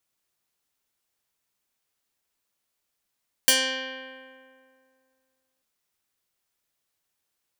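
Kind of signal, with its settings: plucked string C4, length 2.14 s, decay 2.26 s, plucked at 0.2, medium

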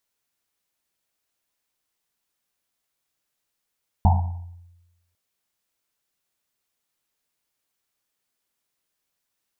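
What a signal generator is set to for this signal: Risset drum, pitch 87 Hz, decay 1.07 s, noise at 820 Hz, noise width 250 Hz, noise 25%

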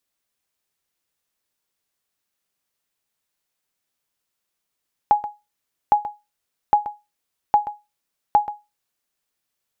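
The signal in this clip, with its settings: sonar ping 833 Hz, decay 0.23 s, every 0.81 s, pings 5, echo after 0.13 s, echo -14 dB -6.5 dBFS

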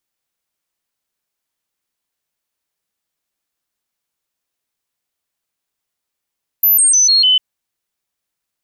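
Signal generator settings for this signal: stepped sine 12.1 kHz down, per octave 2, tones 5, 0.15 s, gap 0.00 s -8 dBFS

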